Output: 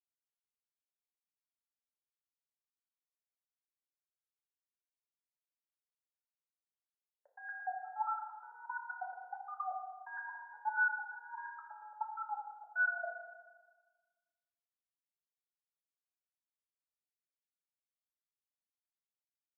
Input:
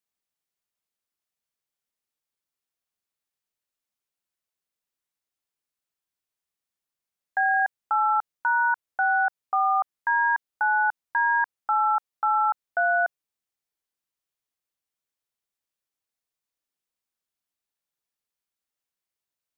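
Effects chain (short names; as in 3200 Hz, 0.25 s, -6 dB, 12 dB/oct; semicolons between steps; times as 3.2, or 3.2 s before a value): local time reversal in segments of 0.117 s; level quantiser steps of 12 dB; wah 1.5 Hz 450–1500 Hz, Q 14; FDN reverb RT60 1.4 s, low-frequency decay 1×, high-frequency decay 1×, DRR 0.5 dB; gain -5 dB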